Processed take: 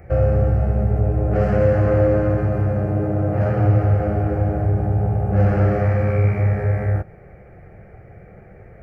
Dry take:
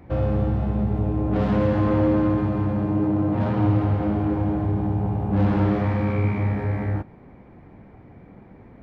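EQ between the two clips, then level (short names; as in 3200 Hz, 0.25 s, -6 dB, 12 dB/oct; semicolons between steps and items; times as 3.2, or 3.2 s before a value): fixed phaser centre 980 Hz, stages 6; dynamic EQ 2100 Hz, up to -4 dB, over -51 dBFS, Q 1.6; +7.5 dB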